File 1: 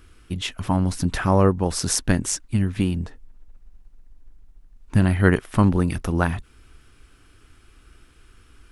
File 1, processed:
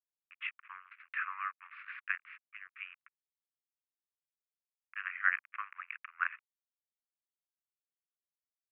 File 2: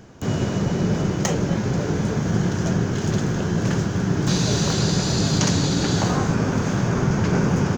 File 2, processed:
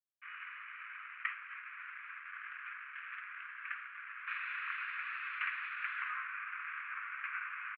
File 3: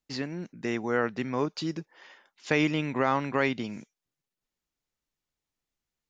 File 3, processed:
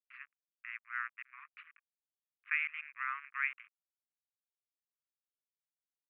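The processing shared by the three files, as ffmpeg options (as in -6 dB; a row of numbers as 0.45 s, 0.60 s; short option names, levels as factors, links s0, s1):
-af "aderivative,aresample=11025,aeval=exprs='sgn(val(0))*max(abs(val(0))-0.00316,0)':c=same,aresample=44100,asuperpass=centerf=1700:order=12:qfactor=1.2,volume=2.99"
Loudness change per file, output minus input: -16.0 LU, -20.0 LU, -8.5 LU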